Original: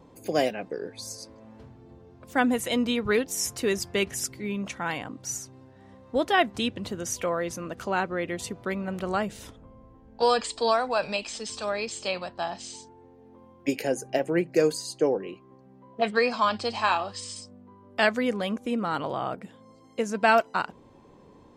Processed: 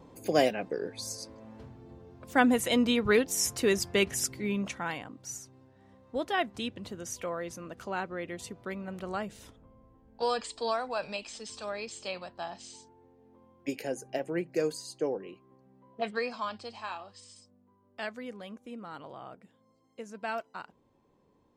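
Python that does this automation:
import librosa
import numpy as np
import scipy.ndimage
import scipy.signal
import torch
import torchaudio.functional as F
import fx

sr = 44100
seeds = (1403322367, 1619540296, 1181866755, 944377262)

y = fx.gain(x, sr, db=fx.line((4.58, 0.0), (5.09, -7.5), (16.01, -7.5), (16.86, -15.0)))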